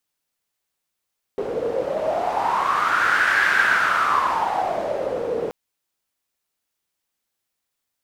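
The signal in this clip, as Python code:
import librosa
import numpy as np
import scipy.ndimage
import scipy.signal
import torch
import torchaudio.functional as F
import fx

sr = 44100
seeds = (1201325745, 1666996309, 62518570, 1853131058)

y = fx.wind(sr, seeds[0], length_s=4.13, low_hz=460.0, high_hz=1600.0, q=7.2, gusts=1, swing_db=7.5)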